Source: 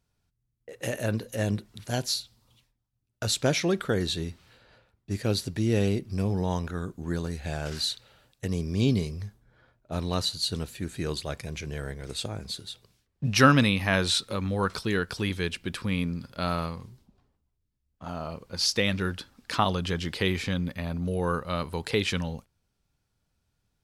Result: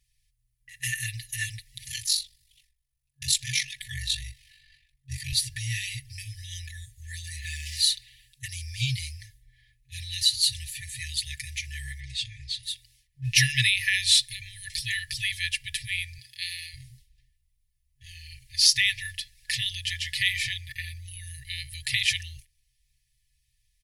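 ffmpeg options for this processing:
ffmpeg -i in.wav -filter_complex "[0:a]asettb=1/sr,asplit=3[link_01][link_02][link_03];[link_01]atrim=end=1.884[link_04];[link_02]atrim=start=1.88:end=5.33,asetpts=PTS-STARTPTS,afade=type=in:duration=0.004:curve=qsin,afade=type=out:start_time=3.446:duration=0.004:curve=qsin,aeval=exprs='val(0)*sin(2*PI*24*n/s)':channel_layout=same[link_05];[link_03]atrim=start=5.326[link_06];[link_04][link_05]acrossfade=duration=0.004:curve1=hsin:curve2=qsin[link_07];[link_07][link_06]acrossfade=duration=0.004:curve1=qsin:curve2=hsin,asettb=1/sr,asplit=3[link_08][link_09][link_10];[link_08]atrim=end=7.424[link_11];[link_09]atrim=start=7.42:end=7.9,asetpts=PTS-STARTPTS,afade=type=in:duration=0.004:curve=qsin,afade=type=out:start_time=0.476:duration=0.004:curve=qsin,aeval=exprs='val(0)*gte(abs(val(0)),0.002)':channel_layout=same[link_12];[link_10]atrim=start=7.896[link_13];[link_11][link_12]acrossfade=duration=0.004:curve1=hsin:curve2=qsin[link_14];[link_14][link_13]acrossfade=duration=0.004:curve1=qsin:curve2=hsin,asettb=1/sr,asplit=3[link_15][link_16][link_17];[link_15]atrim=end=12.004[link_18];[link_16]atrim=start=12:end=12.63,asetpts=PTS-STARTPTS,afade=type=in:duration=0.004:curve=qsin,afade=type=out:start_time=0.626:duration=0.004:curve=qsin,lowpass=4400[link_19];[link_17]atrim=start=12.626[link_20];[link_18][link_19]acrossfade=duration=0.004:curve1=hsin:curve2=qsin[link_21];[link_21][link_20]acrossfade=duration=0.004:curve1=qsin:curve2=hsin,asettb=1/sr,asplit=3[link_22][link_23][link_24];[link_22]atrim=end=16.184[link_25];[link_23]atrim=start=16.18:end=16.74,asetpts=PTS-STARTPTS,afade=type=in:duration=0.004:curve=qsin,afade=type=out:start_time=0.556:duration=0.004:curve=qsin,highpass=frequency=360:poles=1[link_26];[link_24]atrim=start=16.736[link_27];[link_25][link_26]acrossfade=duration=0.004:curve1=hsin:curve2=qsin[link_28];[link_28][link_27]acrossfade=duration=0.004:curve1=qsin:curve2=hsin,aecho=1:1:5.1:0.96,afftfilt=real='re*(1-between(b*sr/4096,130,1700))':imag='im*(1-between(b*sr/4096,130,1700))':win_size=4096:overlap=0.75,equalizer=frequency=9900:width=7:gain=11,volume=3.5dB" out.wav

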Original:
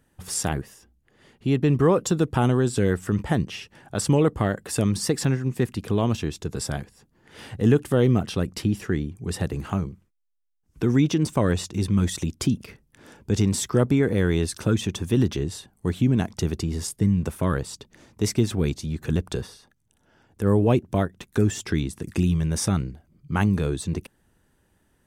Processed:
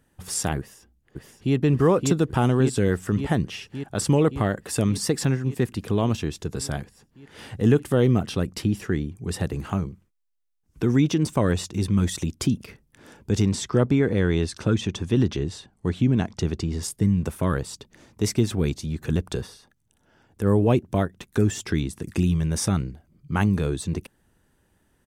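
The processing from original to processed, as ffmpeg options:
ffmpeg -i in.wav -filter_complex "[0:a]asplit=2[link_01][link_02];[link_02]afade=type=in:start_time=0.58:duration=0.01,afade=type=out:start_time=1.55:duration=0.01,aecho=0:1:570|1140|1710|2280|2850|3420|3990|4560|5130|5700|6270|6840:0.668344|0.501258|0.375943|0.281958|0.211468|0.158601|0.118951|0.0892131|0.0669099|0.0501824|0.0376368|0.0282276[link_03];[link_01][link_03]amix=inputs=2:normalize=0,asettb=1/sr,asplit=3[link_04][link_05][link_06];[link_04]atrim=end=13.464[link_07];[link_05]atrim=start=13.46:end=16.83,asetpts=PTS-STARTPTS,afade=type=in:duration=0.004:curve=qsin,afade=type=out:start_time=3.366:duration=0.004:curve=qsin,lowpass=6500[link_08];[link_06]atrim=start=16.826[link_09];[link_07][link_08]acrossfade=duration=0.004:curve1=hsin:curve2=qsin[link_10];[link_10][link_09]acrossfade=duration=0.004:curve1=qsin:curve2=hsin" out.wav

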